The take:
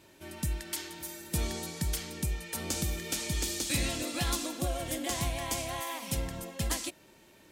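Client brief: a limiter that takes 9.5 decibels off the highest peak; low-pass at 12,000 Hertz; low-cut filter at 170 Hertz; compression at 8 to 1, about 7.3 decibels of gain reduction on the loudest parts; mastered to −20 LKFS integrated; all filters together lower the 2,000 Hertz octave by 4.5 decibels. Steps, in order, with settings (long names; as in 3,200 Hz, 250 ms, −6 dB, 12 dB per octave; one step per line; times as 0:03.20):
high-pass filter 170 Hz
low-pass filter 12,000 Hz
parametric band 2,000 Hz −5.5 dB
downward compressor 8 to 1, threshold −38 dBFS
level +23 dB
brickwall limiter −9 dBFS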